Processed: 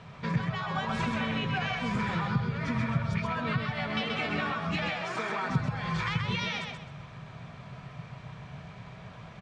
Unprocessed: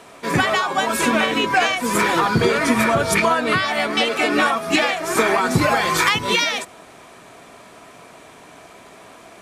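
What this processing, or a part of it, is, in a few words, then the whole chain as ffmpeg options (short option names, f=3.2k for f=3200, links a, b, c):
jukebox: -filter_complex "[0:a]lowpass=5.4k,lowshelf=f=210:t=q:w=3:g=13,acompressor=threshold=-23dB:ratio=4,asettb=1/sr,asplit=3[a][b][c];[a]atrim=end=4.894[d];[b]atrim=start=4.89:end=5.5,asetpts=PTS-STARTPTS,afade=t=in:d=0.004:c=qsin,afade=t=out:st=0.606:d=0.004:c=qsin,highpass=290[e];[c]atrim=start=5.496[f];[d][e]acrossfade=d=0.004:c1=hsin:c2=qsin[g];[g][f]acrossfade=d=0.004:c1=qsin:c2=hsin,lowpass=5.2k,bandreject=f=680:w=20,aecho=1:1:130|260|390|520:0.596|0.173|0.0501|0.0145,volume=-6.5dB"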